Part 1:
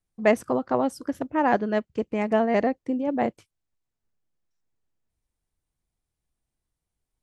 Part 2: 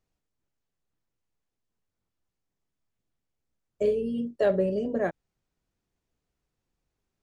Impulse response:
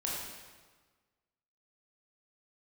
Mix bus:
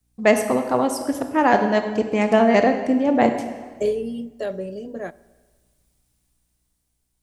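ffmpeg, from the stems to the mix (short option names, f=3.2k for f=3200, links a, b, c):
-filter_complex "[0:a]volume=0dB,asplit=2[a][b];[b]volume=-6.5dB[c];[1:a]aeval=exprs='val(0)+0.000891*(sin(2*PI*60*n/s)+sin(2*PI*2*60*n/s)/2+sin(2*PI*3*60*n/s)/3+sin(2*PI*4*60*n/s)/4+sin(2*PI*5*60*n/s)/5)':c=same,agate=range=-33dB:threshold=-57dB:ratio=3:detection=peak,volume=-2dB,afade=t=out:st=3.77:d=0.71:silence=0.316228,asplit=2[d][e];[e]volume=-22.5dB[f];[2:a]atrim=start_sample=2205[g];[c][f]amix=inputs=2:normalize=0[h];[h][g]afir=irnorm=-1:irlink=0[i];[a][d][i]amix=inputs=3:normalize=0,highshelf=f=3.7k:g=11,dynaudnorm=f=460:g=7:m=9.5dB"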